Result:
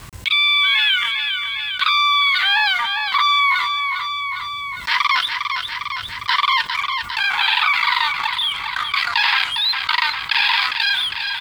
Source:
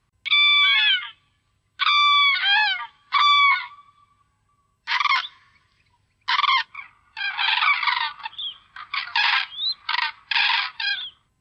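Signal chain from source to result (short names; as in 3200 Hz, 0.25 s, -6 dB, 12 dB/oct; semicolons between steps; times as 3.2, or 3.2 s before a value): G.711 law mismatch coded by A; on a send: feedback echo 0.404 s, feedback 32%, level -19 dB; on the sum: fast leveller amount 70%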